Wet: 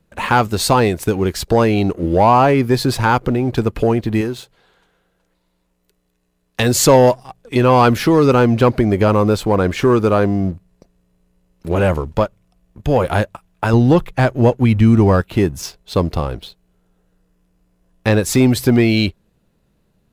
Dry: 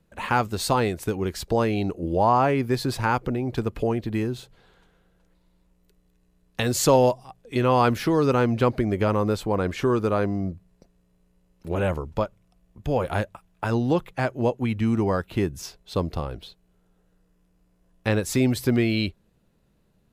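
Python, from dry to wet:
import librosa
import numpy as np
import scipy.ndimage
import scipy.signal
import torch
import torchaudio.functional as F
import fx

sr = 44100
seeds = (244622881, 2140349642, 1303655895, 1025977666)

y = fx.low_shelf(x, sr, hz=230.0, db=-10.0, at=(4.21, 6.6))
y = fx.leveller(y, sr, passes=1)
y = fx.low_shelf(y, sr, hz=100.0, db=11.5, at=(13.73, 15.21))
y = y * librosa.db_to_amplitude(5.5)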